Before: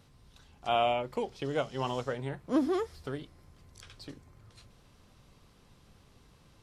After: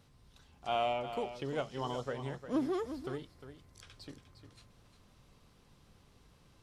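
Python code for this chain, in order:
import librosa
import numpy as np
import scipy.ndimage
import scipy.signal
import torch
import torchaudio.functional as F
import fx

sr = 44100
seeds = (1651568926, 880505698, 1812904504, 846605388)

p1 = fx.spec_erase(x, sr, start_s=1.8, length_s=0.23, low_hz=1400.0, high_hz=2900.0)
p2 = 10.0 ** (-29.5 / 20.0) * np.tanh(p1 / 10.0 ** (-29.5 / 20.0))
p3 = p1 + (p2 * librosa.db_to_amplitude(-7.5))
p4 = p3 + 10.0 ** (-10.5 / 20.0) * np.pad(p3, (int(354 * sr / 1000.0), 0))[:len(p3)]
y = p4 * librosa.db_to_amplitude(-6.5)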